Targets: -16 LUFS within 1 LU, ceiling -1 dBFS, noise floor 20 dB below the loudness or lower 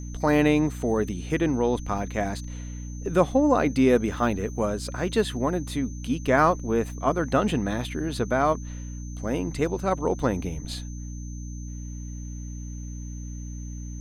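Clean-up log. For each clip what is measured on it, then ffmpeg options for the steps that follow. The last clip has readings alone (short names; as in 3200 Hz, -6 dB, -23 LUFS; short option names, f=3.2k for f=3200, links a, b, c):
hum 60 Hz; harmonics up to 300 Hz; hum level -33 dBFS; steady tone 6200 Hz; tone level -47 dBFS; loudness -25.0 LUFS; peak -7.0 dBFS; loudness target -16.0 LUFS
-> -af "bandreject=f=60:t=h:w=4,bandreject=f=120:t=h:w=4,bandreject=f=180:t=h:w=4,bandreject=f=240:t=h:w=4,bandreject=f=300:t=h:w=4"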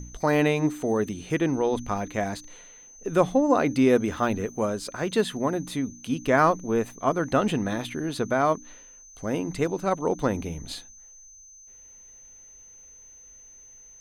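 hum none; steady tone 6200 Hz; tone level -47 dBFS
-> -af "bandreject=f=6.2k:w=30"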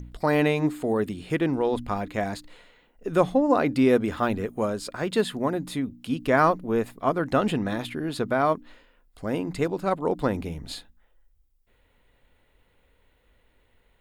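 steady tone none; loudness -25.5 LUFS; peak -6.5 dBFS; loudness target -16.0 LUFS
-> -af "volume=9.5dB,alimiter=limit=-1dB:level=0:latency=1"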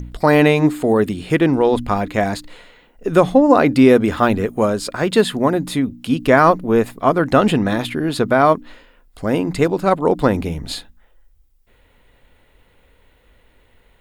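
loudness -16.5 LUFS; peak -1.0 dBFS; noise floor -56 dBFS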